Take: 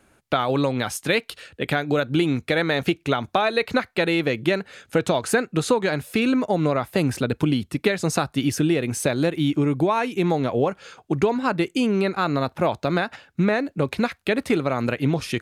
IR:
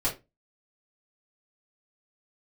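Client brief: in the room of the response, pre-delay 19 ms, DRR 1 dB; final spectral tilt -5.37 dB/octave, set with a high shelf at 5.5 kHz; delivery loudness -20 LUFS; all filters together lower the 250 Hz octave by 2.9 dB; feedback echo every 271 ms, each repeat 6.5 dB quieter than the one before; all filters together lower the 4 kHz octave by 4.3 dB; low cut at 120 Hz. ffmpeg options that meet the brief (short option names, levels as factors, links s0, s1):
-filter_complex "[0:a]highpass=120,equalizer=f=250:t=o:g=-3.5,equalizer=f=4000:t=o:g=-3.5,highshelf=f=5500:g=-5,aecho=1:1:271|542|813|1084|1355|1626:0.473|0.222|0.105|0.0491|0.0231|0.0109,asplit=2[s0][s1];[1:a]atrim=start_sample=2205,adelay=19[s2];[s1][s2]afir=irnorm=-1:irlink=0,volume=0.335[s3];[s0][s3]amix=inputs=2:normalize=0,volume=1.06"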